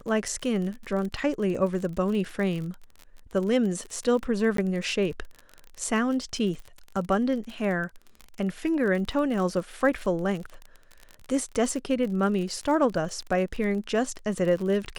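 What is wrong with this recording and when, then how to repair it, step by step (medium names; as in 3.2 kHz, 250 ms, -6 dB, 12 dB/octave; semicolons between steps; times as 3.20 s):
crackle 34 per s -32 dBFS
4.57–4.58 s: dropout 13 ms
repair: de-click; interpolate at 4.57 s, 13 ms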